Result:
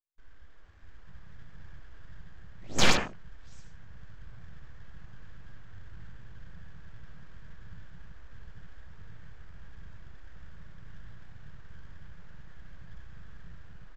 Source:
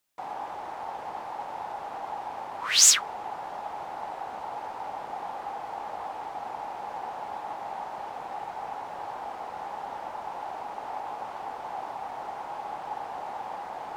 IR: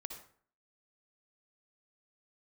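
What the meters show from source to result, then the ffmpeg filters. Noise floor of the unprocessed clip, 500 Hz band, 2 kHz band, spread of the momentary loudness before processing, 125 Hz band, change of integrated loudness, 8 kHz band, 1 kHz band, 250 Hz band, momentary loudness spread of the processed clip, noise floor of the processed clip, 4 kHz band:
−40 dBFS, −5.0 dB, −1.0 dB, 1 LU, +12.5 dB, +3.0 dB, −17.0 dB, −13.5 dB, +6.5 dB, 14 LU, −44 dBFS, −7.0 dB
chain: -filter_complex "[0:a]equalizer=frequency=1600:width_type=o:width=2.9:gain=-6.5,acrossover=split=1200[link_01][link_02];[link_01]asoftclip=type=tanh:threshold=-37dB[link_03];[link_03][link_02]amix=inputs=2:normalize=0,lowshelf=frequency=320:gain=6,aecho=1:1:693:0.0668,aresample=16000,aeval=exprs='abs(val(0))':channel_layout=same,aresample=44100,dynaudnorm=framelen=400:gausssize=5:maxgain=5.5dB[link_04];[1:a]atrim=start_sample=2205,afade=type=out:start_time=0.23:duration=0.01,atrim=end_sample=10584[link_05];[link_04][link_05]afir=irnorm=-1:irlink=0,afwtdn=0.0178"

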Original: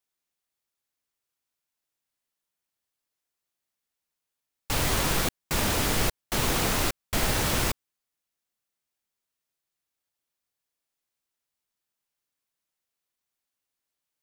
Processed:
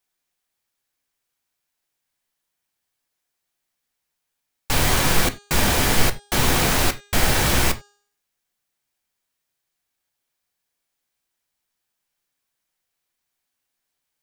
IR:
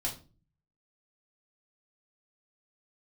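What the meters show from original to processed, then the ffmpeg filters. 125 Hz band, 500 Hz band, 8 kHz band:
+6.5 dB, +5.5 dB, +6.0 dB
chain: -filter_complex "[0:a]bandreject=frequency=408.4:width_type=h:width=4,bandreject=frequency=816.8:width_type=h:width=4,bandreject=frequency=1225.2:width_type=h:width=4,bandreject=frequency=1633.6:width_type=h:width=4,bandreject=frequency=2042:width_type=h:width=4,bandreject=frequency=2450.4:width_type=h:width=4,bandreject=frequency=2858.8:width_type=h:width=4,bandreject=frequency=3267.2:width_type=h:width=4,bandreject=frequency=3675.6:width_type=h:width=4,bandreject=frequency=4084:width_type=h:width=4,bandreject=frequency=4492.4:width_type=h:width=4,bandreject=frequency=4900.8:width_type=h:width=4,bandreject=frequency=5309.2:width_type=h:width=4,bandreject=frequency=5717.6:width_type=h:width=4,bandreject=frequency=6126:width_type=h:width=4,bandreject=frequency=6534.4:width_type=h:width=4,bandreject=frequency=6942.8:width_type=h:width=4,bandreject=frequency=7351.2:width_type=h:width=4,bandreject=frequency=7759.6:width_type=h:width=4,bandreject=frequency=8168:width_type=h:width=4,bandreject=frequency=8576.4:width_type=h:width=4,asplit=2[link_01][link_02];[link_02]equalizer=frequency=1900:width=1.6:gain=7[link_03];[1:a]atrim=start_sample=2205,atrim=end_sample=4410[link_04];[link_03][link_04]afir=irnorm=-1:irlink=0,volume=-12dB[link_05];[link_01][link_05]amix=inputs=2:normalize=0,volume=4.5dB"

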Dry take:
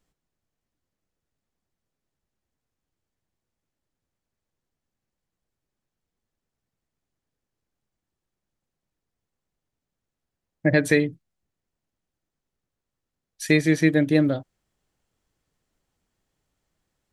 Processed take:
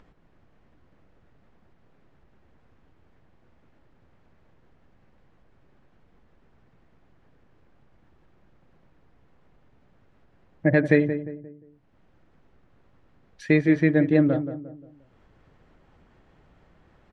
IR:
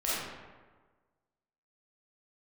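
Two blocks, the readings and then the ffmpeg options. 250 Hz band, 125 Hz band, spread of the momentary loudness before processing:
+0.5 dB, +0.5 dB, 11 LU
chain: -filter_complex "[0:a]lowpass=2000,acompressor=mode=upward:threshold=-40dB:ratio=2.5,asplit=2[link_01][link_02];[link_02]adelay=176,lowpass=frequency=1100:poles=1,volume=-9.5dB,asplit=2[link_03][link_04];[link_04]adelay=176,lowpass=frequency=1100:poles=1,volume=0.41,asplit=2[link_05][link_06];[link_06]adelay=176,lowpass=frequency=1100:poles=1,volume=0.41,asplit=2[link_07][link_08];[link_08]adelay=176,lowpass=frequency=1100:poles=1,volume=0.41[link_09];[link_03][link_05][link_07][link_09]amix=inputs=4:normalize=0[link_10];[link_01][link_10]amix=inputs=2:normalize=0"

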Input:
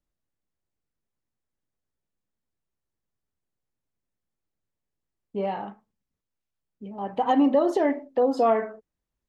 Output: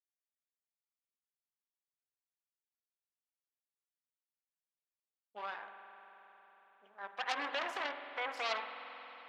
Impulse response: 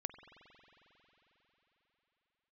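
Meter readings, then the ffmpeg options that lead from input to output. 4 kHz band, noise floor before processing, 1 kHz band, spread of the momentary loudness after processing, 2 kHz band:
+2.5 dB, below −85 dBFS, −13.0 dB, 19 LU, +1.0 dB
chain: -filter_complex "[0:a]aeval=exprs='0.299*(cos(1*acos(clip(val(0)/0.299,-1,1)))-cos(1*PI/2))+0.0596*(cos(3*acos(clip(val(0)/0.299,-1,1)))-cos(3*PI/2))+0.0596*(cos(8*acos(clip(val(0)/0.299,-1,1)))-cos(8*PI/2))':channel_layout=same,highpass=880[link_01];[1:a]atrim=start_sample=2205[link_02];[link_01][link_02]afir=irnorm=-1:irlink=0,volume=-6dB"

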